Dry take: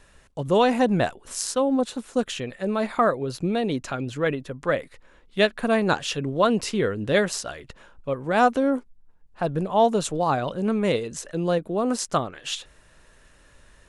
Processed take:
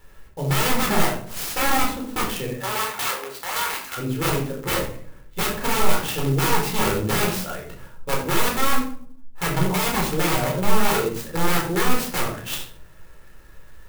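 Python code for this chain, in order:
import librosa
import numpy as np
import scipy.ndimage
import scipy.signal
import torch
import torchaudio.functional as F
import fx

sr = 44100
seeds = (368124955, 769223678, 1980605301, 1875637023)

y = (np.mod(10.0 ** (19.0 / 20.0) * x + 1.0, 2.0) - 1.0) / 10.0 ** (19.0 / 20.0)
y = fx.highpass(y, sr, hz=fx.line((2.5, 540.0), (3.96, 1300.0)), slope=12, at=(2.5, 3.96), fade=0.02)
y = fx.room_shoebox(y, sr, seeds[0], volume_m3=650.0, walls='furnished', distance_m=4.2)
y = fx.clock_jitter(y, sr, seeds[1], jitter_ms=0.043)
y = y * 10.0 ** (-3.0 / 20.0)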